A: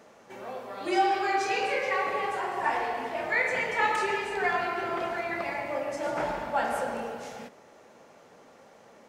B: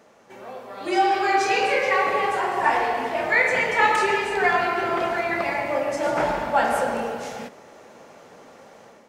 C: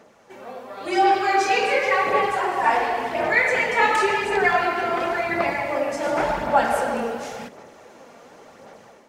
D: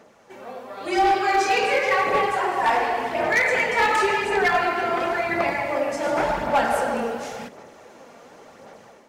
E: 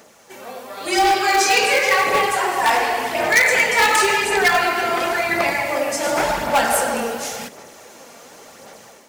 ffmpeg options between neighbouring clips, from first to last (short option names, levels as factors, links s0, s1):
-af "dynaudnorm=f=680:g=3:m=2.37"
-af "aphaser=in_gain=1:out_gain=1:delay=4.3:decay=0.35:speed=0.92:type=sinusoidal"
-af "asoftclip=type=hard:threshold=0.2"
-af "crystalizer=i=4:c=0,volume=1.19"